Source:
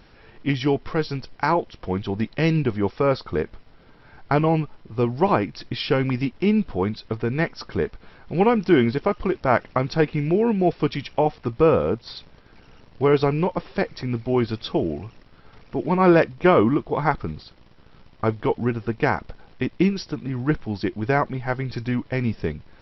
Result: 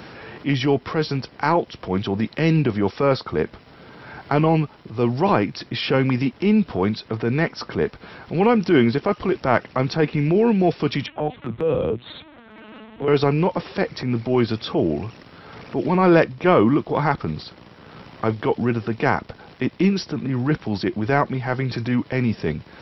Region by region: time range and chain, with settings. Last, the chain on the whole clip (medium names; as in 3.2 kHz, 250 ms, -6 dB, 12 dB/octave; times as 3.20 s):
11.06–13.08 s: compression 2:1, threshold -23 dBFS + touch-sensitive flanger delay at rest 5.7 ms, full sweep at -21.5 dBFS + LPC vocoder at 8 kHz pitch kept
whole clip: high-pass 100 Hz 12 dB/octave; transient shaper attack -7 dB, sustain +2 dB; three bands compressed up and down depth 40%; trim +4 dB